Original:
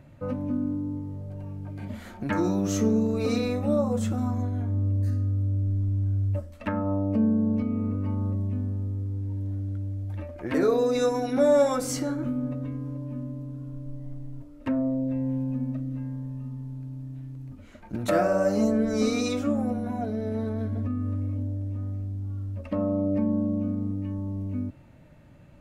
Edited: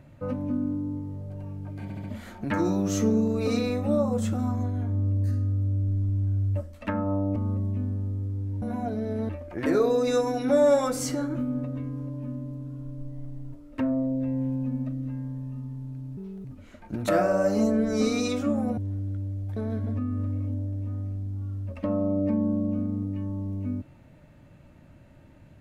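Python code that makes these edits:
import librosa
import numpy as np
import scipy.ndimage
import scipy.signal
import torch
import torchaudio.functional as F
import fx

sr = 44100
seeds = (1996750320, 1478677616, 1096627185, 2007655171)

y = fx.edit(x, sr, fx.stutter(start_s=1.83, slice_s=0.07, count=4),
    fx.cut(start_s=7.15, length_s=0.97),
    fx.swap(start_s=9.38, length_s=0.79, other_s=19.78, other_length_s=0.67),
    fx.speed_span(start_s=17.05, length_s=0.4, speed=1.46), tone=tone)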